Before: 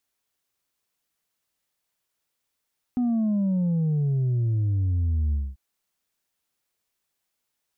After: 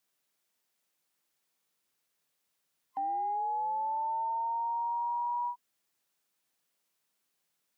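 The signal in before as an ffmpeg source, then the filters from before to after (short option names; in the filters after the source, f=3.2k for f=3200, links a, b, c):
-f lavfi -i "aevalsrc='0.0891*clip((2.59-t)/0.23,0,1)*tanh(1.33*sin(2*PI*250*2.59/log(65/250)*(exp(log(65/250)*t/2.59)-1)))/tanh(1.33)':d=2.59:s=44100"
-af "afftfilt=real='real(if(between(b,1,1008),(2*floor((b-1)/48)+1)*48-b,b),0)':imag='imag(if(between(b,1,1008),(2*floor((b-1)/48)+1)*48-b,b),0)*if(between(b,1,1008),-1,1)':win_size=2048:overlap=0.75,highpass=f=120:w=0.5412,highpass=f=120:w=1.3066,alimiter=level_in=4.5dB:limit=-24dB:level=0:latency=1:release=52,volume=-4.5dB"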